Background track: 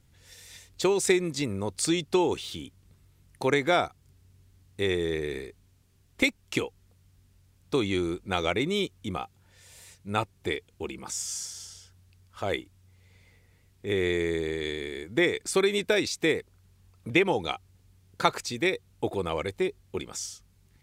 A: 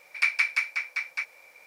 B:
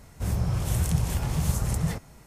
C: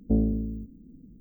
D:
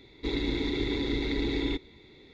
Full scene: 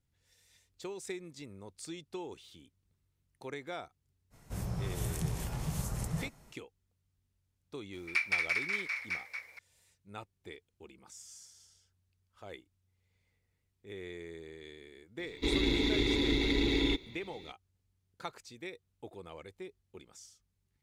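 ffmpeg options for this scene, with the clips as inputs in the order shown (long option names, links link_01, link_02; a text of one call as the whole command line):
ffmpeg -i bed.wav -i cue0.wav -i cue1.wav -i cue2.wav -i cue3.wav -filter_complex "[0:a]volume=-18dB[link_01];[2:a]equalizer=frequency=78:width=3.3:gain=-10[link_02];[1:a]asplit=6[link_03][link_04][link_05][link_06][link_07][link_08];[link_04]adelay=233,afreqshift=-53,volume=-4dB[link_09];[link_05]adelay=466,afreqshift=-106,volume=-12.2dB[link_10];[link_06]adelay=699,afreqshift=-159,volume=-20.4dB[link_11];[link_07]adelay=932,afreqshift=-212,volume=-28.5dB[link_12];[link_08]adelay=1165,afreqshift=-265,volume=-36.7dB[link_13];[link_03][link_09][link_10][link_11][link_12][link_13]amix=inputs=6:normalize=0[link_14];[4:a]aexciter=amount=1.1:drive=8.8:freq=2400[link_15];[link_02]atrim=end=2.26,asetpts=PTS-STARTPTS,volume=-8dB,afade=type=in:duration=0.05,afade=type=out:start_time=2.21:duration=0.05,adelay=4300[link_16];[link_14]atrim=end=1.66,asetpts=PTS-STARTPTS,volume=-7dB,afade=type=in:duration=0.004:curve=hsin,afade=type=out:start_time=1.656:duration=0.004:curve=hsin,adelay=7930[link_17];[link_15]atrim=end=2.33,asetpts=PTS-STARTPTS,volume=-0.5dB,afade=type=in:duration=0.004:curve=hsin,afade=type=out:start_time=2.326:duration=0.004:curve=hsin,adelay=15190[link_18];[link_01][link_16][link_17][link_18]amix=inputs=4:normalize=0" out.wav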